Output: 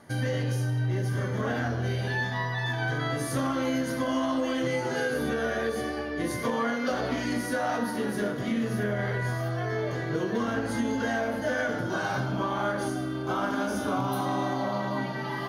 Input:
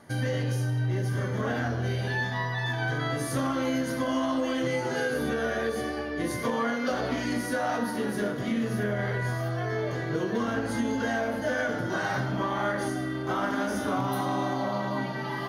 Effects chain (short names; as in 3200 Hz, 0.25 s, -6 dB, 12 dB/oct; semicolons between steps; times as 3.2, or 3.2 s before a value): 11.83–14.24 notch 1900 Hz, Q 5.4